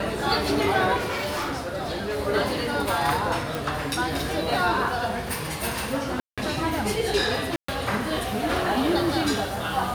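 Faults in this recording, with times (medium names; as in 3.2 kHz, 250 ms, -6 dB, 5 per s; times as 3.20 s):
0.96–2.20 s: clipped -25 dBFS
3.55 s: pop
6.20–6.38 s: dropout 176 ms
7.56–7.68 s: dropout 124 ms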